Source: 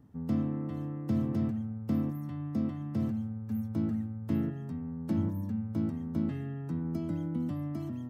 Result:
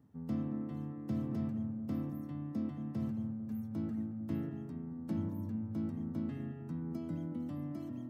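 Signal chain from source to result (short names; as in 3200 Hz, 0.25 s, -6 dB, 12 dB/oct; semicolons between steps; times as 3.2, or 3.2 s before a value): HPF 86 Hz; on a send: darkening echo 0.222 s, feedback 55%, low-pass 880 Hz, level -8 dB; on the sum: gain -6 dB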